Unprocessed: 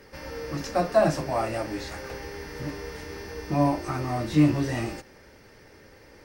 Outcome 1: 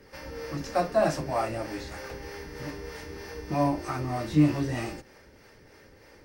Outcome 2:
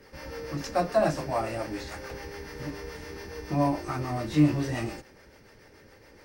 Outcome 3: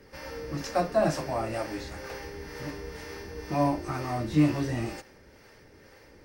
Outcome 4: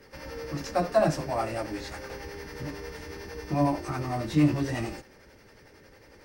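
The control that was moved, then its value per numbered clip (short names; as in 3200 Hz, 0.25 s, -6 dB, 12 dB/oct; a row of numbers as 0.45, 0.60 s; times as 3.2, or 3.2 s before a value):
harmonic tremolo, rate: 3.2, 7, 2.1, 11 Hz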